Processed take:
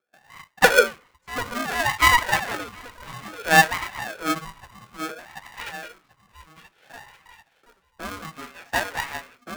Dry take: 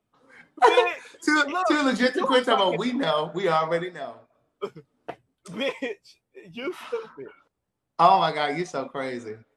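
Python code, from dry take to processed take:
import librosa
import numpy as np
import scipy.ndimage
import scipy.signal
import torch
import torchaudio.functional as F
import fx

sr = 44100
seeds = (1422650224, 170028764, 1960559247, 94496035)

p1 = fx.quant_companded(x, sr, bits=4)
p2 = x + (p1 * librosa.db_to_amplitude(-11.5))
p3 = fx.filter_lfo_highpass(p2, sr, shape='saw_up', hz=0.29, low_hz=880.0, high_hz=2300.0, q=1.9)
p4 = p3 + fx.echo_feedback(p3, sr, ms=737, feedback_pct=46, wet_db=-8, dry=0)
p5 = fx.wah_lfo(p4, sr, hz=0.59, low_hz=530.0, high_hz=1500.0, q=8.4)
p6 = fx.peak_eq(p5, sr, hz=1100.0, db=-9.0, octaves=2.6, at=(6.67, 8.54), fade=0.02)
p7 = p6 * np.sign(np.sin(2.0 * np.pi * 480.0 * np.arange(len(p6)) / sr))
y = p7 * librosa.db_to_amplitude(7.5)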